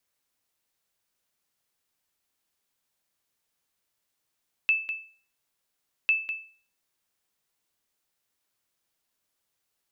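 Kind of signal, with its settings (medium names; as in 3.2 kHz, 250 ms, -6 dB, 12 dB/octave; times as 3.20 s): sonar ping 2.63 kHz, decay 0.42 s, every 1.40 s, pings 2, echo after 0.20 s, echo -10.5 dB -15.5 dBFS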